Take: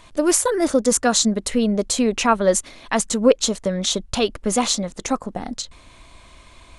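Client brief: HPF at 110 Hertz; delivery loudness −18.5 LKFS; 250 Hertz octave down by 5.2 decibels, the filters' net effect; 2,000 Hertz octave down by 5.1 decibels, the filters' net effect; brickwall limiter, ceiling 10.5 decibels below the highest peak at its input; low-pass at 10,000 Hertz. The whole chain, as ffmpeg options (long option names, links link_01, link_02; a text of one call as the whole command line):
ffmpeg -i in.wav -af "highpass=110,lowpass=10000,equalizer=frequency=250:width_type=o:gain=-6,equalizer=frequency=2000:width_type=o:gain=-7,volume=7.5dB,alimiter=limit=-7.5dB:level=0:latency=1" out.wav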